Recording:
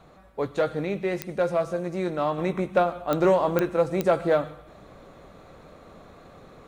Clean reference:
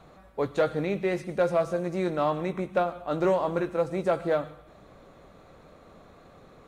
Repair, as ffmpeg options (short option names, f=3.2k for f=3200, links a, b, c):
-af "adeclick=t=4,asetnsamples=n=441:p=0,asendcmd='2.38 volume volume -4dB',volume=0dB"